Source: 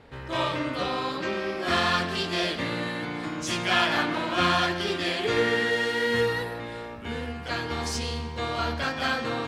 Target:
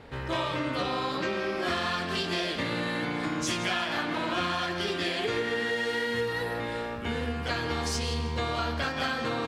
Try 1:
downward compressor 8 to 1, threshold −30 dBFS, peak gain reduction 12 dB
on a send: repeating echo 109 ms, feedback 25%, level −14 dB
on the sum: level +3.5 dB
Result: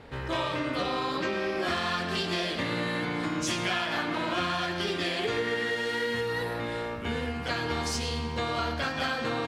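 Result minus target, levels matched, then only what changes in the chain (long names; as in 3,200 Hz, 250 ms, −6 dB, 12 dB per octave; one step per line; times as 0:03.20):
echo 58 ms early
change: repeating echo 167 ms, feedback 25%, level −14 dB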